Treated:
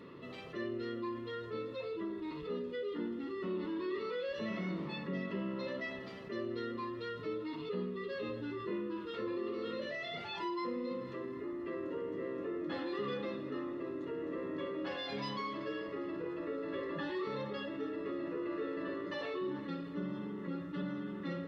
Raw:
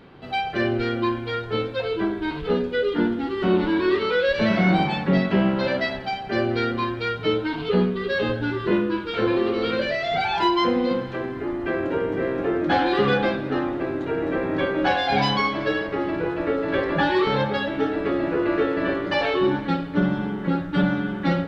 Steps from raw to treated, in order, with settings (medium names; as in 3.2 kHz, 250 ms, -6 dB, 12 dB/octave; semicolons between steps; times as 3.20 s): boxcar filter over 57 samples; differentiator; level flattener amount 50%; trim +11 dB